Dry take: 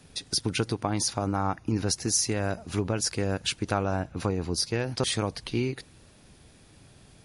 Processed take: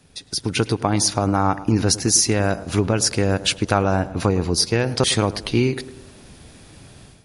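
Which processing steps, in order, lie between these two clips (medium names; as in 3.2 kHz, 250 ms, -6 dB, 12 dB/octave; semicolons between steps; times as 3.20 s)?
on a send: tape echo 107 ms, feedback 60%, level -13.5 dB, low-pass 1.1 kHz; on the sum: level rider gain up to 11 dB; trim -1 dB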